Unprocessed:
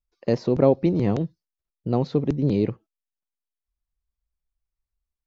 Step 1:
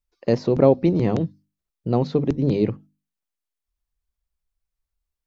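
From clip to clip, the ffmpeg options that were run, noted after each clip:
-af "bandreject=f=50:t=h:w=6,bandreject=f=100:t=h:w=6,bandreject=f=150:t=h:w=6,bandreject=f=200:t=h:w=6,bandreject=f=250:t=h:w=6,bandreject=f=300:t=h:w=6,volume=1.33"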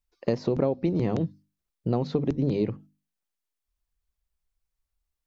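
-af "acompressor=threshold=0.0891:ratio=6"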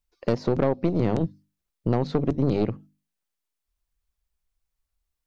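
-af "aeval=exprs='(tanh(10*val(0)+0.7)-tanh(0.7))/10':c=same,volume=1.88"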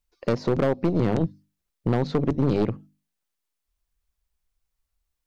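-af "asoftclip=type=hard:threshold=0.188,volume=1.19"

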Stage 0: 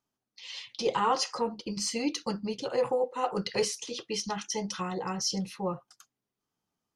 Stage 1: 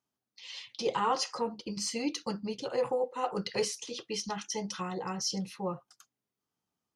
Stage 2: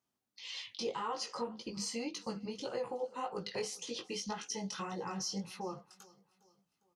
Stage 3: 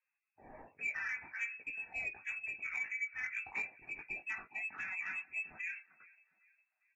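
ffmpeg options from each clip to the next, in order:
-af "highpass=49,volume=0.75"
-af "acompressor=threshold=0.0126:ratio=3,flanger=delay=17:depth=4.6:speed=1.8,aecho=1:1:405|810|1215:0.075|0.0322|0.0139,volume=1.5"
-af "lowpass=f=2400:t=q:w=0.5098,lowpass=f=2400:t=q:w=0.6013,lowpass=f=2400:t=q:w=0.9,lowpass=f=2400:t=q:w=2.563,afreqshift=-2800,asoftclip=type=tanh:threshold=0.0376" -ar 44100 -c:a libvorbis -b:a 48k

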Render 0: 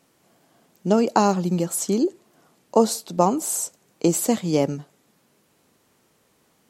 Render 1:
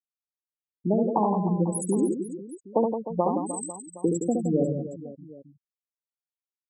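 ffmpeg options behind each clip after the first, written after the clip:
-filter_complex "[0:a]acompressor=threshold=0.0631:ratio=2,afftfilt=real='re*gte(hypot(re,im),0.178)':imag='im*gte(hypot(re,im),0.178)':win_size=1024:overlap=0.75,asplit=2[s0][s1];[s1]aecho=0:1:70|168|305.2|497.3|766.2:0.631|0.398|0.251|0.158|0.1[s2];[s0][s2]amix=inputs=2:normalize=0"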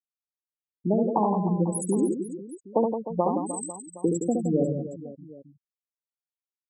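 -af anull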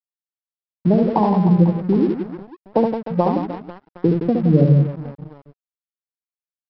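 -af "equalizer=f=140:t=o:w=0.54:g=15,aresample=11025,aeval=exprs='sgn(val(0))*max(abs(val(0))-0.00944,0)':c=same,aresample=44100,volume=2"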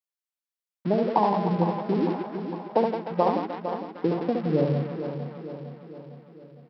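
-filter_complex "[0:a]highpass=f=690:p=1,asplit=2[s0][s1];[s1]aecho=0:1:456|912|1368|1824|2280|2736:0.335|0.184|0.101|0.0557|0.0307|0.0169[s2];[s0][s2]amix=inputs=2:normalize=0"

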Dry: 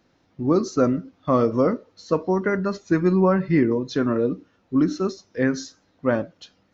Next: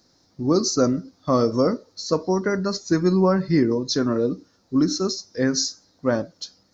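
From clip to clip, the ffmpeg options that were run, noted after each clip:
-af "highshelf=f=3700:t=q:w=3:g=9"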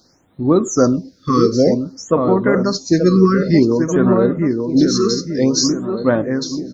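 -filter_complex "[0:a]asplit=2[s0][s1];[s1]adelay=882,lowpass=f=1900:p=1,volume=0.562,asplit=2[s2][s3];[s3]adelay=882,lowpass=f=1900:p=1,volume=0.49,asplit=2[s4][s5];[s5]adelay=882,lowpass=f=1900:p=1,volume=0.49,asplit=2[s6][s7];[s7]adelay=882,lowpass=f=1900:p=1,volume=0.49,asplit=2[s8][s9];[s9]adelay=882,lowpass=f=1900:p=1,volume=0.49,asplit=2[s10][s11];[s11]adelay=882,lowpass=f=1900:p=1,volume=0.49[s12];[s2][s4][s6][s8][s10][s12]amix=inputs=6:normalize=0[s13];[s0][s13]amix=inputs=2:normalize=0,afftfilt=real='re*(1-between(b*sr/1024,700*pow(6200/700,0.5+0.5*sin(2*PI*0.54*pts/sr))/1.41,700*pow(6200/700,0.5+0.5*sin(2*PI*0.54*pts/sr))*1.41))':imag='im*(1-between(b*sr/1024,700*pow(6200/700,0.5+0.5*sin(2*PI*0.54*pts/sr))/1.41,700*pow(6200/700,0.5+0.5*sin(2*PI*0.54*pts/sr))*1.41))':win_size=1024:overlap=0.75,volume=2"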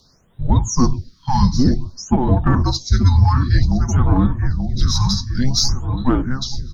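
-filter_complex "[0:a]afreqshift=-270,asplit=2[s0][s1];[s1]asoftclip=type=hard:threshold=0.158,volume=0.282[s2];[s0][s2]amix=inputs=2:normalize=0,volume=0.841"

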